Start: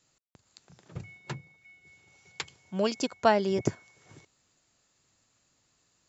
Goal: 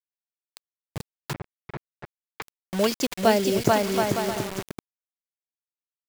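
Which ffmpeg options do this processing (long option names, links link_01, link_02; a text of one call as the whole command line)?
ffmpeg -i in.wav -filter_complex "[0:a]aecho=1:1:440|726|911.9|1033|1111:0.631|0.398|0.251|0.158|0.1,acrusher=bits=5:mix=0:aa=0.000001,asettb=1/sr,asplit=3[link_01][link_02][link_03];[link_01]atrim=end=1.344[link_04];[link_02]atrim=start=1.34:end=2.42,asetpts=PTS-STARTPTS,afade=type=in:duration=0.004:curve=qsin,afade=type=out:start_time=1.076:duration=0.004:curve=qsin,lowpass=1700[link_05];[link_03]atrim=start=2.416[link_06];[link_04][link_05]acrossfade=duration=0.004:curve1=hsin:curve2=qsin[link_07];[link_07][link_06]acrossfade=duration=0.004:curve1=qsin:curve2=hsin,asettb=1/sr,asplit=3[link_08][link_09][link_10];[link_08]atrim=end=3.144[link_11];[link_09]atrim=start=3.14:end=3.65,asetpts=PTS-STARTPTS,afade=type=in:duration=0.004:curve=qsin,afade=type=out:start_time=0.506:duration=0.004:curve=qsin,equalizer=frequency=1100:width=1.5:gain=-8[link_12];[link_10]atrim=start=3.646[link_13];[link_11][link_12]acrossfade=duration=0.004:curve1=hsin:curve2=qsin[link_14];[link_14][link_13]acrossfade=duration=0.004:curve1=qsin:curve2=hsin,volume=4.5dB" out.wav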